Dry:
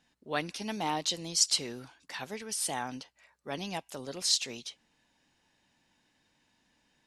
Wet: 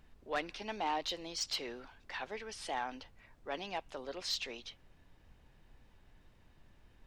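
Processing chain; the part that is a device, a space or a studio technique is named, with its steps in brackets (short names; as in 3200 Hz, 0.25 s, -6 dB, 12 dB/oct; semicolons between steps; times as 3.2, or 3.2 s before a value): aircraft cabin announcement (BPF 380–3100 Hz; soft clip -26 dBFS, distortion -16 dB; brown noise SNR 17 dB)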